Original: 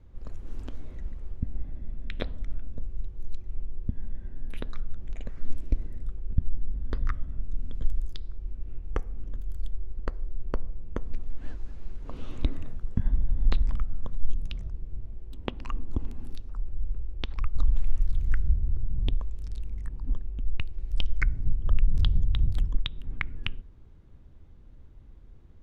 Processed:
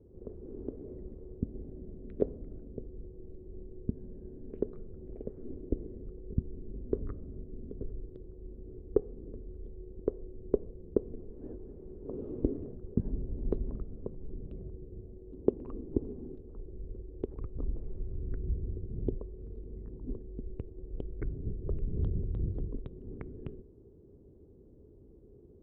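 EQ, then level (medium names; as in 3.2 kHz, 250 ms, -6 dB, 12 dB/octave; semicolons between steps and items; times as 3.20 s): high-pass 150 Hz 6 dB/octave; resonant low-pass 410 Hz, resonance Q 4.9; +1.0 dB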